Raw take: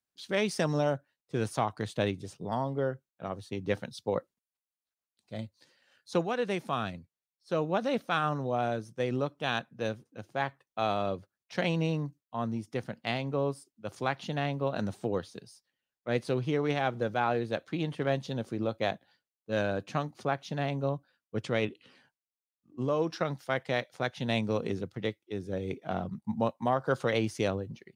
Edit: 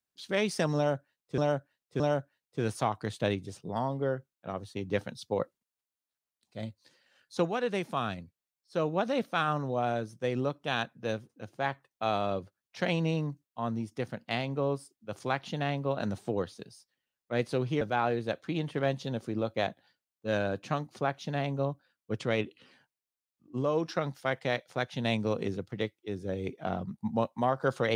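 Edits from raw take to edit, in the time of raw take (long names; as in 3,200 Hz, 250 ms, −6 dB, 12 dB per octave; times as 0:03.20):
0:00.76–0:01.38: repeat, 3 plays
0:16.57–0:17.05: remove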